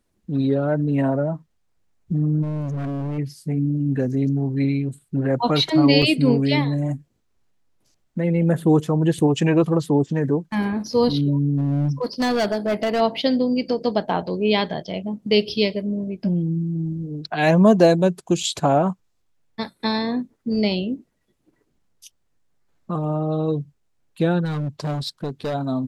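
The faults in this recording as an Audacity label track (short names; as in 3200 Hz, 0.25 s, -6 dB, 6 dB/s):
2.420000	3.190000	clipped -24 dBFS
6.020000	6.030000	gap 5.2 ms
11.570000	13.010000	clipped -17 dBFS
24.440000	25.550000	clipped -22 dBFS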